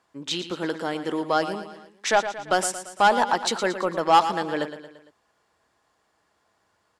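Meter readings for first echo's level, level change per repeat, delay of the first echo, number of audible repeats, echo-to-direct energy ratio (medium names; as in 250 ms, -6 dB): -11.0 dB, -5.5 dB, 114 ms, 4, -9.5 dB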